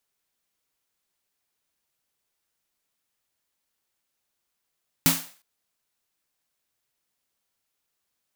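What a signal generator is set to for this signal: snare drum length 0.36 s, tones 170 Hz, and 270 Hz, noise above 550 Hz, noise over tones 3 dB, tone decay 0.28 s, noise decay 0.42 s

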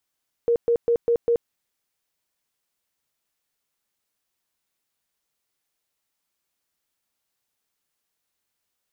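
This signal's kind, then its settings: tone bursts 470 Hz, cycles 37, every 0.20 s, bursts 5, -16 dBFS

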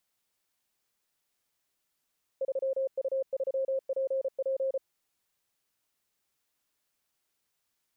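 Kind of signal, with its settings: Morse "3U3PP" 34 wpm 534 Hz -26.5 dBFS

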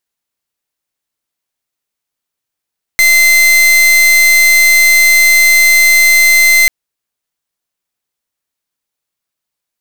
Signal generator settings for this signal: pulse 2070 Hz, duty 41% -7 dBFS 3.69 s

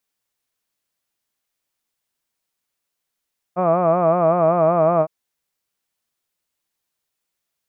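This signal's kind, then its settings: formant-synthesis vowel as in hud, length 1.51 s, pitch 174 Hz, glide -1 st, vibrato depth 1.05 st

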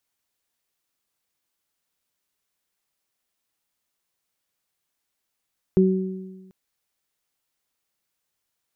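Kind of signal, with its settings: additive tone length 0.74 s, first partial 188 Hz, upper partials -1 dB, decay 1.33 s, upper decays 1.09 s, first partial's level -14 dB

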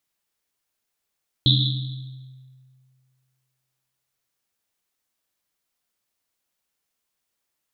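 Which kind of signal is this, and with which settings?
Risset drum length 3.51 s, pitch 130 Hz, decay 2.08 s, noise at 3700 Hz, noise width 700 Hz, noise 40%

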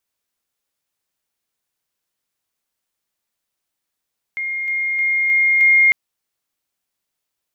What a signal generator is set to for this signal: level ladder 2130 Hz -21 dBFS, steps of 3 dB, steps 5, 0.31 s 0.00 s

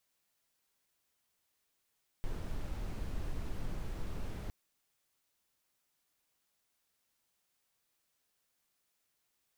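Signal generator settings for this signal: noise brown, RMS -37 dBFS 2.26 s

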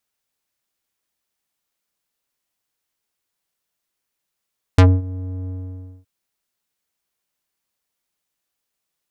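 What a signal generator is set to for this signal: synth note square F#2 12 dB/oct, low-pass 350 Hz, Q 0.79, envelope 5 oct, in 0.09 s, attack 4.7 ms, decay 0.23 s, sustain -20 dB, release 0.57 s, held 0.70 s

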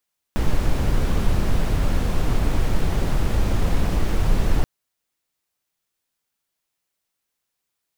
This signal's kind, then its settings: noise brown, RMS -17.5 dBFS 4.28 s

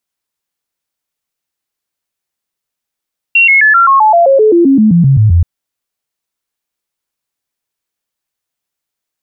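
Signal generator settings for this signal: stepped sine 2740 Hz down, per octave 3, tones 16, 0.13 s, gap 0.00 s -3.5 dBFS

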